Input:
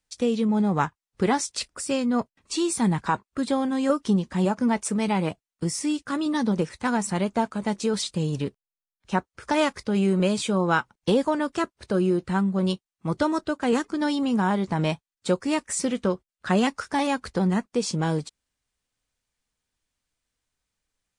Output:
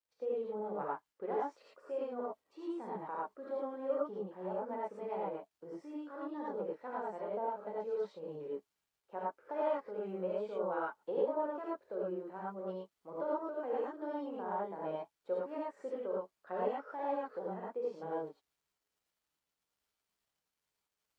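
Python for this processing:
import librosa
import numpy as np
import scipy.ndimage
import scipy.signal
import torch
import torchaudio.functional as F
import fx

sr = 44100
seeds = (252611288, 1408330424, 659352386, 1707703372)

y = fx.ladder_bandpass(x, sr, hz=610.0, resonance_pct=45)
y = fx.dmg_crackle(y, sr, seeds[0], per_s=190.0, level_db=-67.0)
y = fx.rev_gated(y, sr, seeds[1], gate_ms=130, shape='rising', drr_db=-5.5)
y = F.gain(torch.from_numpy(y), -7.0).numpy()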